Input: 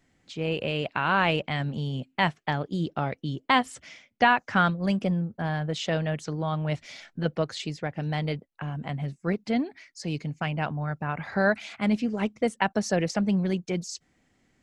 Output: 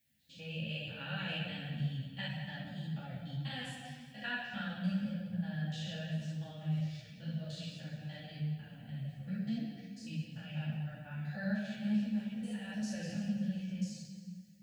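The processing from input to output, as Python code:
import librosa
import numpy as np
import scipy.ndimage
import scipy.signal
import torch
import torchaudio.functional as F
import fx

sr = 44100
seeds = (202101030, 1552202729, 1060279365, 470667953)

y = fx.spec_steps(x, sr, hold_ms=100)
y = scipy.signal.sosfilt(scipy.signal.butter(2, 100.0, 'highpass', fs=sr, output='sos'), y)
y = fx.high_shelf(y, sr, hz=6600.0, db=9.0)
y = fx.fixed_phaser(y, sr, hz=870.0, stages=4)
y = fx.echo_thinned(y, sr, ms=178, feedback_pct=50, hz=420.0, wet_db=-12.0)
y = fx.room_shoebox(y, sr, seeds[0], volume_m3=1600.0, walls='mixed', distance_m=2.4)
y = fx.dmg_noise_colour(y, sr, seeds[1], colour='violet', level_db=-62.0)
y = fx.curve_eq(y, sr, hz=(210.0, 750.0, 1100.0, 1900.0, 5900.0), db=(0, -12, -27, 11, -8))
y = fx.ensemble(y, sr)
y = F.gain(torch.from_numpy(y), -5.0).numpy()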